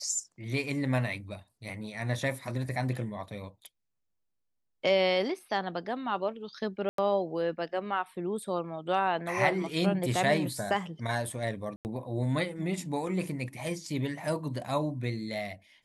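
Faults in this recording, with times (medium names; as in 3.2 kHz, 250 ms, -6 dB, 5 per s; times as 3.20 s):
6.89–6.98 s: dropout 93 ms
11.76–11.85 s: dropout 89 ms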